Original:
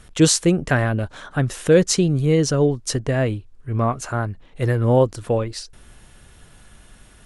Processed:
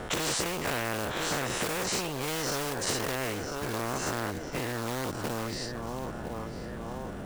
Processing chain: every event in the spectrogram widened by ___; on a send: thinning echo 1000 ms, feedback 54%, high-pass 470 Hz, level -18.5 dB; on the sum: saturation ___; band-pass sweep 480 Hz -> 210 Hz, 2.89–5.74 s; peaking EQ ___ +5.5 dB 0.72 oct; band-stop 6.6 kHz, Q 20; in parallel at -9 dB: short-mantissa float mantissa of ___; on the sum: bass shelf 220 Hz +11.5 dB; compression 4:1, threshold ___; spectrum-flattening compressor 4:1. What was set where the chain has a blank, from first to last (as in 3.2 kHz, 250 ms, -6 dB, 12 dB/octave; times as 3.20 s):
120 ms, -11 dBFS, 7.3 kHz, 2-bit, -26 dBFS